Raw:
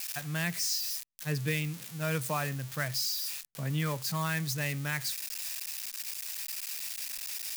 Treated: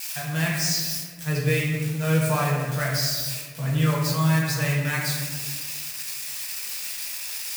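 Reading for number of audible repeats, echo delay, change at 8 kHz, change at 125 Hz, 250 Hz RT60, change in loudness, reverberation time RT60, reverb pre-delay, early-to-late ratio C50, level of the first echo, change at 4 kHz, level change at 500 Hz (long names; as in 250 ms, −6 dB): no echo audible, no echo audible, +6.0 dB, +11.0 dB, 2.2 s, +8.0 dB, 1.7 s, 4 ms, 1.0 dB, no echo audible, +6.0 dB, +10.0 dB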